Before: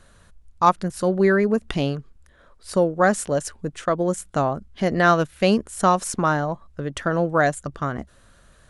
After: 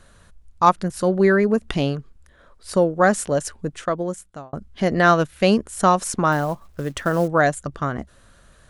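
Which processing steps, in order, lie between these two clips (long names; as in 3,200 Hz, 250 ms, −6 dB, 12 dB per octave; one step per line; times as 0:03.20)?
0:03.67–0:04.53: fade out
0:06.32–0:07.28: log-companded quantiser 6 bits
level +1.5 dB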